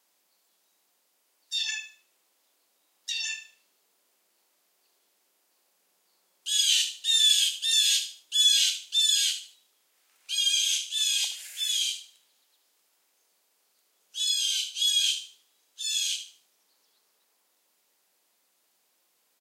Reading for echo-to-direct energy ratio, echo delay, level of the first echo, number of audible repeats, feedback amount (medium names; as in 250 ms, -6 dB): -12.0 dB, 75 ms, -12.5 dB, 3, 30%